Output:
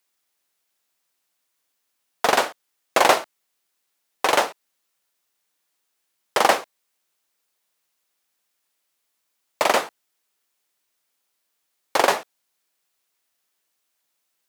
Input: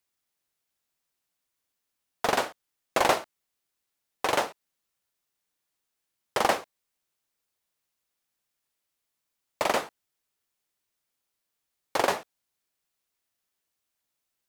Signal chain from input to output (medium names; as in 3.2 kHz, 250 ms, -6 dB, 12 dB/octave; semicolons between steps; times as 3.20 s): high-pass 330 Hz 6 dB/octave; trim +7.5 dB